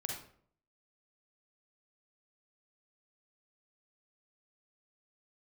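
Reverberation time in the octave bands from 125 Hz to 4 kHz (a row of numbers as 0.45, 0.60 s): 0.70, 0.65, 0.60, 0.50, 0.45, 0.40 s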